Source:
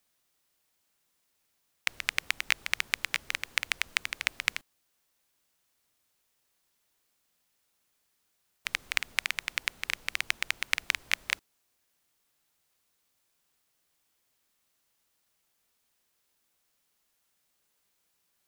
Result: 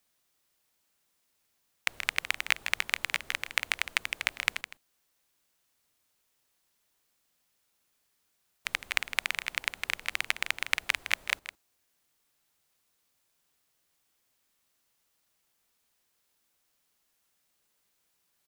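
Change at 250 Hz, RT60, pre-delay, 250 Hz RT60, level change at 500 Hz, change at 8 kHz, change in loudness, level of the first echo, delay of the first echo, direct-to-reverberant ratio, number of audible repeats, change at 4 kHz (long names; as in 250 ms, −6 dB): +1.0 dB, no reverb audible, no reverb audible, no reverb audible, +3.5 dB, −1.0 dB, +0.5 dB, −12.0 dB, 160 ms, no reverb audible, 1, −0.5 dB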